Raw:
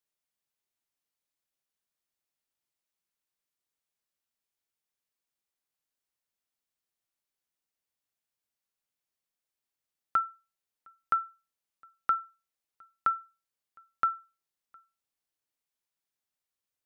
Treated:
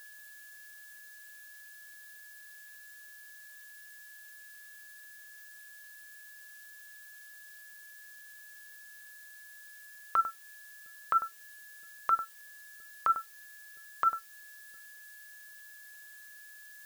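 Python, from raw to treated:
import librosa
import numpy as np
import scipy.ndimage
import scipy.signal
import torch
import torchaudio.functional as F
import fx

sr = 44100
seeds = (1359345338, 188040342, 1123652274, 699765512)

p1 = fx.wiener(x, sr, points=41)
p2 = fx.peak_eq(p1, sr, hz=740.0, db=7.0, octaves=1.8)
p3 = fx.hum_notches(p2, sr, base_hz=60, count=9)
p4 = fx.dereverb_blind(p3, sr, rt60_s=1.5)
p5 = p4 + 10.0 ** (-59.0 / 20.0) * np.sin(2.0 * np.pi * 1700.0 * np.arange(len(p4)) / sr)
p6 = fx.high_shelf(p5, sr, hz=2800.0, db=6.0)
p7 = p6 + fx.echo_single(p6, sr, ms=98, db=-20.0, dry=0)
p8 = fx.env_lowpass_down(p7, sr, base_hz=1200.0, full_db=-30.0)
p9 = fx.over_compress(p8, sr, threshold_db=-28.0, ratio=-1.0)
p10 = fx.dmg_noise_colour(p9, sr, seeds[0], colour='blue', level_db=-59.0)
y = F.gain(torch.from_numpy(p10), 3.5).numpy()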